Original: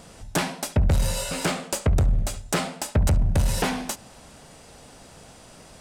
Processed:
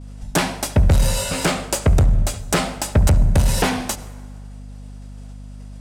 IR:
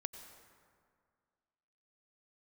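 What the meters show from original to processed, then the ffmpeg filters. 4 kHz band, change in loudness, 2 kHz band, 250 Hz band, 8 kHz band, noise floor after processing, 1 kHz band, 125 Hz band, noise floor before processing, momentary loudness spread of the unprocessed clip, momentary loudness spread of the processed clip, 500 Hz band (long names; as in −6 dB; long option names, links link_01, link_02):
+5.5 dB, +5.5 dB, +5.5 dB, +5.5 dB, +5.5 dB, −36 dBFS, +5.5 dB, +5.5 dB, −48 dBFS, 6 LU, 22 LU, +5.5 dB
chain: -filter_complex "[0:a]agate=range=-33dB:threshold=-38dB:ratio=3:detection=peak,asplit=2[link_01][link_02];[1:a]atrim=start_sample=2205,asetrate=48510,aresample=44100[link_03];[link_02][link_03]afir=irnorm=-1:irlink=0,volume=-4dB[link_04];[link_01][link_04]amix=inputs=2:normalize=0,aeval=exprs='val(0)+0.0141*(sin(2*PI*50*n/s)+sin(2*PI*2*50*n/s)/2+sin(2*PI*3*50*n/s)/3+sin(2*PI*4*50*n/s)/4+sin(2*PI*5*50*n/s)/5)':channel_layout=same,volume=2.5dB"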